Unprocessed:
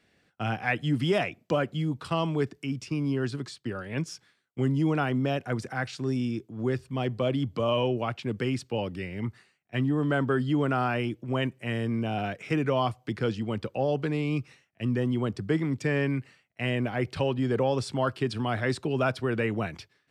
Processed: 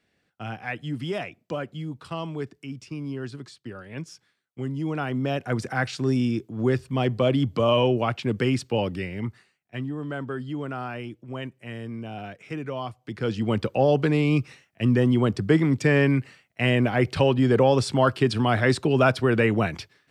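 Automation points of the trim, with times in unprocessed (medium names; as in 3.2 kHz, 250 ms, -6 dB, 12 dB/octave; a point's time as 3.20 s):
4.74 s -4.5 dB
5.70 s +5.5 dB
8.91 s +5.5 dB
9.96 s -6 dB
12.99 s -6 dB
13.48 s +7 dB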